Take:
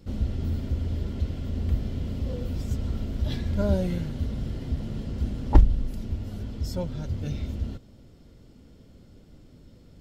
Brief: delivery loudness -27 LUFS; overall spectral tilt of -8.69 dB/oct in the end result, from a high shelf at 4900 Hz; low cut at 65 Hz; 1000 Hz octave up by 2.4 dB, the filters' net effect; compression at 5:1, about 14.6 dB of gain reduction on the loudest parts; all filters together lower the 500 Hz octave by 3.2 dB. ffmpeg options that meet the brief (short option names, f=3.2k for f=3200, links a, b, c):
-af "highpass=65,equalizer=f=500:t=o:g=-5.5,equalizer=f=1k:t=o:g=5,highshelf=f=4.9k:g=-5,acompressor=threshold=-31dB:ratio=5,volume=10dB"